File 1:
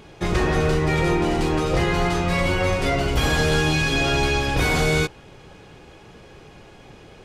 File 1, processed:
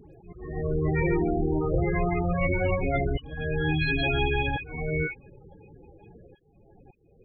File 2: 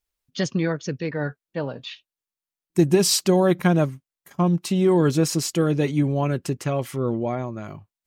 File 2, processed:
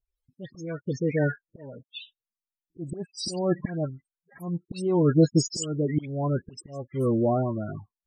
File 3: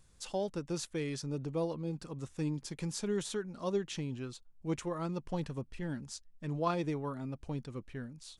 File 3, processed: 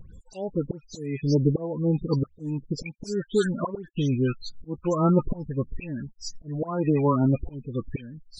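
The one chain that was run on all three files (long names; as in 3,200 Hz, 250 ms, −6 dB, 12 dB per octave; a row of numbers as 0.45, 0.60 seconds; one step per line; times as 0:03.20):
spectral peaks only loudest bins 16
volume swells 566 ms
all-pass dispersion highs, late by 146 ms, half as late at 2,400 Hz
loudness normalisation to −27 LKFS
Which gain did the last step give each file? −3.0, +3.0, +19.0 decibels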